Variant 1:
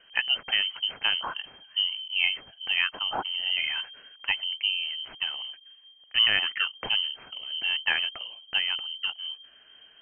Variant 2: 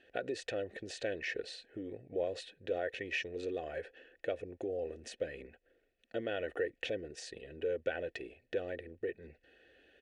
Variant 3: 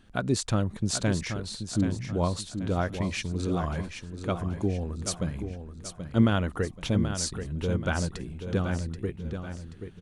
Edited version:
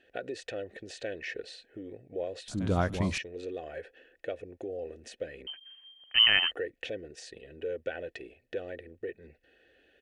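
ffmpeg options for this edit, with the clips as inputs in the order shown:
ffmpeg -i take0.wav -i take1.wav -i take2.wav -filter_complex "[1:a]asplit=3[link_01][link_02][link_03];[link_01]atrim=end=2.482[link_04];[2:a]atrim=start=2.478:end=3.182[link_05];[link_02]atrim=start=3.178:end=5.472[link_06];[0:a]atrim=start=5.468:end=6.512[link_07];[link_03]atrim=start=6.508[link_08];[link_04][link_05]acrossfade=duration=0.004:curve1=hsin:curve2=hsin[link_09];[link_09][link_06]acrossfade=duration=0.004:curve1=hsin:curve2=hsin[link_10];[link_10][link_07]acrossfade=duration=0.004:curve1=hsin:curve2=hsin[link_11];[link_11][link_08]acrossfade=duration=0.004:curve1=hsin:curve2=hsin" out.wav

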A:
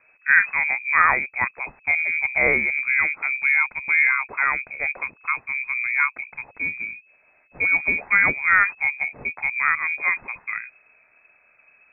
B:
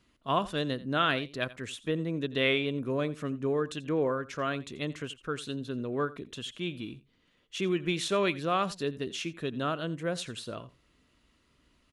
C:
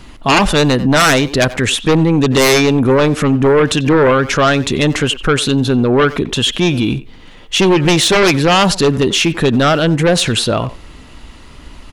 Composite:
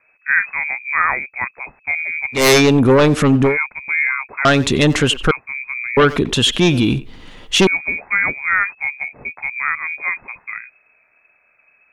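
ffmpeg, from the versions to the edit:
ffmpeg -i take0.wav -i take1.wav -i take2.wav -filter_complex "[2:a]asplit=3[link_01][link_02][link_03];[0:a]asplit=4[link_04][link_05][link_06][link_07];[link_04]atrim=end=2.48[link_08];[link_01]atrim=start=2.32:end=3.58[link_09];[link_05]atrim=start=3.42:end=4.452[link_10];[link_02]atrim=start=4.448:end=5.312[link_11];[link_06]atrim=start=5.308:end=5.972[link_12];[link_03]atrim=start=5.968:end=7.672[link_13];[link_07]atrim=start=7.668[link_14];[link_08][link_09]acrossfade=duration=0.16:curve1=tri:curve2=tri[link_15];[link_15][link_10]acrossfade=duration=0.16:curve1=tri:curve2=tri[link_16];[link_16][link_11]acrossfade=duration=0.004:curve1=hsin:curve2=hsin[link_17];[link_17][link_12]acrossfade=duration=0.004:curve1=hsin:curve2=hsin[link_18];[link_18][link_13]acrossfade=duration=0.004:curve1=hsin:curve2=hsin[link_19];[link_19][link_14]acrossfade=duration=0.004:curve1=hsin:curve2=hsin" out.wav

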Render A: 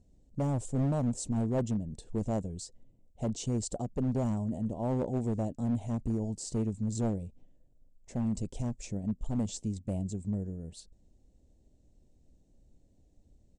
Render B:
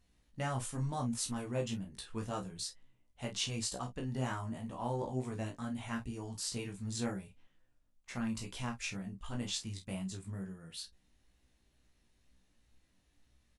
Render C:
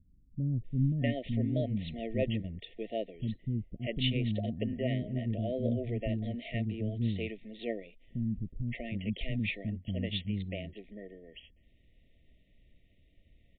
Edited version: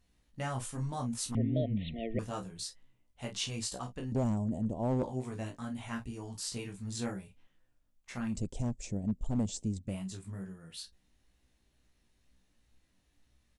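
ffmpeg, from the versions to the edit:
ffmpeg -i take0.wav -i take1.wav -i take2.wav -filter_complex "[0:a]asplit=2[link_01][link_02];[1:a]asplit=4[link_03][link_04][link_05][link_06];[link_03]atrim=end=1.352[link_07];[2:a]atrim=start=1.348:end=2.192[link_08];[link_04]atrim=start=2.188:end=4.122[link_09];[link_01]atrim=start=4.118:end=5.032[link_10];[link_05]atrim=start=5.028:end=8.41[link_11];[link_02]atrim=start=8.25:end=9.99[link_12];[link_06]atrim=start=9.83[link_13];[link_07][link_08]acrossfade=duration=0.004:curve1=hsin:curve2=hsin[link_14];[link_14][link_09]acrossfade=duration=0.004:curve1=hsin:curve2=hsin[link_15];[link_15][link_10]acrossfade=duration=0.004:curve1=hsin:curve2=hsin[link_16];[link_16][link_11]acrossfade=duration=0.004:curve1=hsin:curve2=hsin[link_17];[link_17][link_12]acrossfade=duration=0.16:curve1=tri:curve2=tri[link_18];[link_18][link_13]acrossfade=duration=0.16:curve1=tri:curve2=tri" out.wav

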